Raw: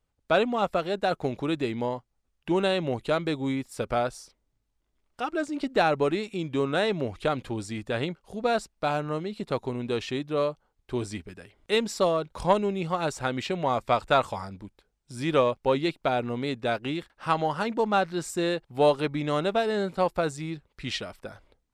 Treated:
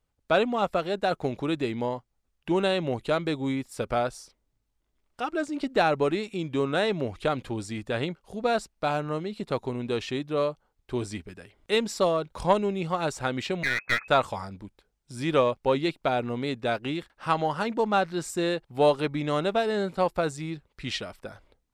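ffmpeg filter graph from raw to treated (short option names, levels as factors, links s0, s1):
-filter_complex "[0:a]asettb=1/sr,asplit=3[s0][s1][s2];[s0]atrim=end=13.634[s3];[s1]atrim=start=13.63:end=14.08,asetpts=PTS-STARTPTS,afade=t=in:d=0.004:c=qsin,afade=t=out:st=0.446:d=0.004:c=qsin,lowpass=f=2200:t=q:w=0.5098,lowpass=f=2200:t=q:w=0.6013,lowpass=f=2200:t=q:w=0.9,lowpass=f=2200:t=q:w=2.563,afreqshift=-2600,aeval=exprs='clip(val(0),-1,0.0447)':c=same[s4];[s2]atrim=start=14.076[s5];[s3][s4]acrossfade=d=0.004:c1=hsin:c2=qsin[s6];[s6][s5]acrossfade=d=0.004:c1=qsin:c2=hsin"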